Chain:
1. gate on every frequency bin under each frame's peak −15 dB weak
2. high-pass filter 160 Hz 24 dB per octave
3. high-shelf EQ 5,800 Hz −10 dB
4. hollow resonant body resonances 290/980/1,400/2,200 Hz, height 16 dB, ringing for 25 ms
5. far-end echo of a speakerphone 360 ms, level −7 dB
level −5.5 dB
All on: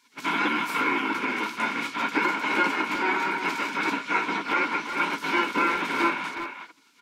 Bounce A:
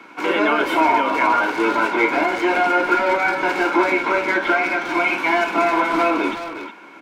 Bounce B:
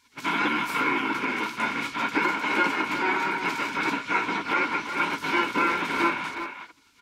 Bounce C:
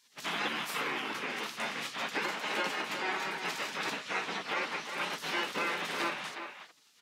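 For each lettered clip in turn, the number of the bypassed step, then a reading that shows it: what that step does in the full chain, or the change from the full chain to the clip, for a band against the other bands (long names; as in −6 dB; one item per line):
1, 500 Hz band +9.0 dB
2, 125 Hz band +2.5 dB
4, 8 kHz band +7.0 dB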